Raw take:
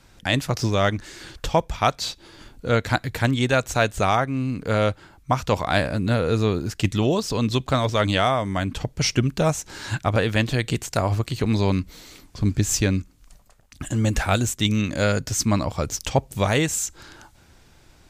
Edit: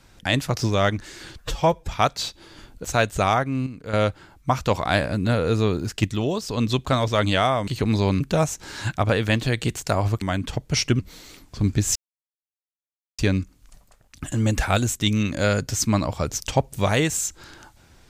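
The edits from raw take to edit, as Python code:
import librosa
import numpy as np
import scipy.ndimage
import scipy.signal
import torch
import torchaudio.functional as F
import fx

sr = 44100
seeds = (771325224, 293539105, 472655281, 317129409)

y = fx.edit(x, sr, fx.stretch_span(start_s=1.36, length_s=0.35, factor=1.5),
    fx.cut(start_s=2.67, length_s=0.99),
    fx.clip_gain(start_s=4.48, length_s=0.27, db=-9.0),
    fx.clip_gain(start_s=6.86, length_s=0.53, db=-3.5),
    fx.swap(start_s=8.49, length_s=0.78, other_s=11.28, other_length_s=0.53),
    fx.insert_silence(at_s=12.77, length_s=1.23), tone=tone)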